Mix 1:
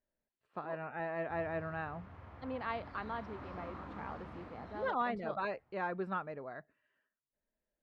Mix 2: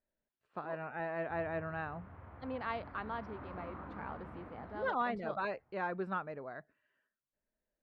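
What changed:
background: add low-pass 2.1 kHz 12 dB/octave; master: remove band-stop 1.5 kHz, Q 28

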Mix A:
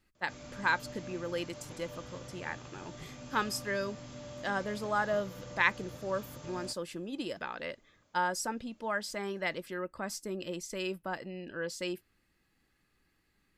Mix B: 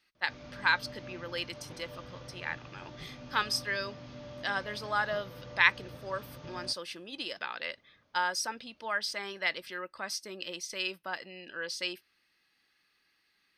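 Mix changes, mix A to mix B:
speech: add tilt EQ +4.5 dB/octave; master: add Savitzky-Golay filter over 15 samples

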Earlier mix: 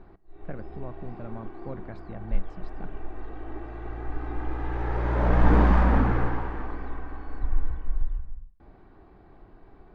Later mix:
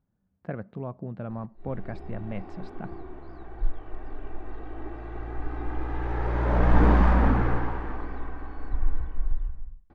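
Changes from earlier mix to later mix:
speech +5.0 dB; background: entry +1.30 s

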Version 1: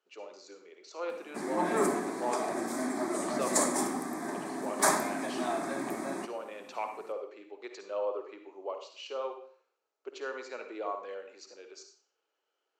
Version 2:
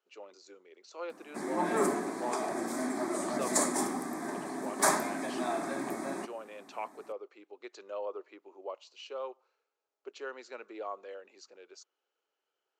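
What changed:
speech: send off; background: send -7.0 dB

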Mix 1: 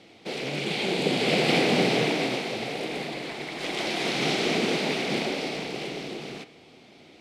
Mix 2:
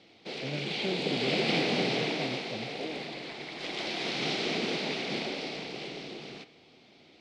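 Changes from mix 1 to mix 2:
background: add four-pole ladder low-pass 5.9 kHz, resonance 30%; master: remove low-pass 6.4 kHz 12 dB/octave

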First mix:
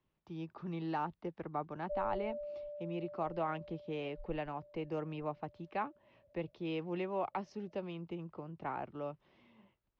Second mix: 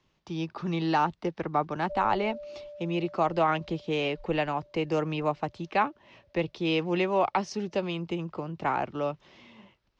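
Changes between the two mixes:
speech +10.0 dB; master: remove tape spacing loss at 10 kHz 22 dB

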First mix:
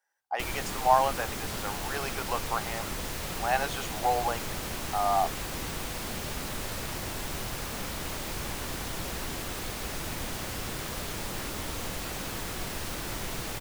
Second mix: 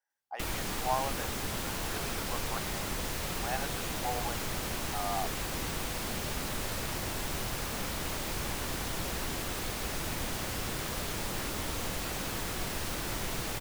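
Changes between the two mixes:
speech -8.0 dB; reverb: off

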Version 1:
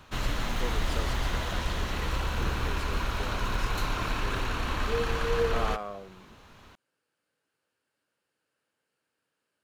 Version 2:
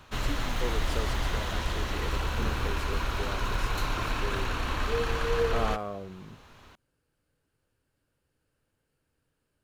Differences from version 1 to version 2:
speech: remove frequency weighting A; master: add peaking EQ 200 Hz -5 dB 0.27 oct

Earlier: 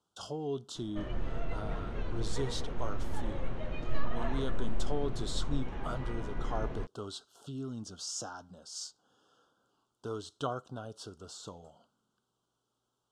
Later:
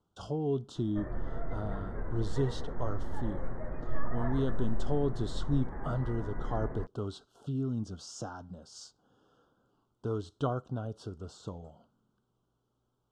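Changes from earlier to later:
speech: add tilt EQ -3 dB/octave; background: add elliptic low-pass 1.9 kHz, stop band 40 dB

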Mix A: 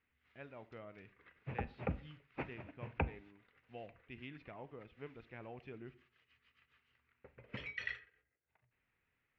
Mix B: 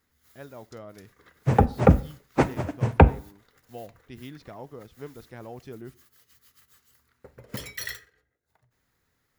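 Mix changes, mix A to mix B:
speech: send -8.5 dB; second sound +11.5 dB; master: remove four-pole ladder low-pass 2.8 kHz, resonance 65%

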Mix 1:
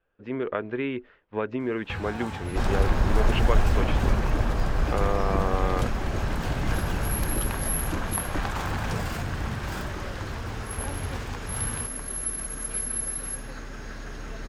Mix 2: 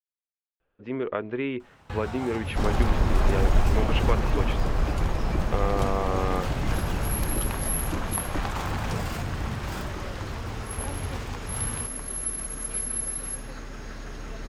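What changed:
speech: entry +0.60 s; master: add peaking EQ 1.6 kHz -4 dB 0.26 oct

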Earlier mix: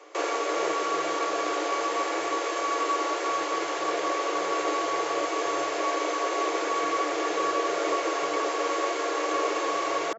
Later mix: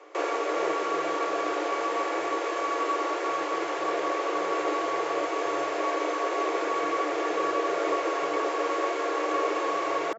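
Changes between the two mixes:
background: add treble shelf 3.3 kHz -11.5 dB; reverb: on, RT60 0.40 s

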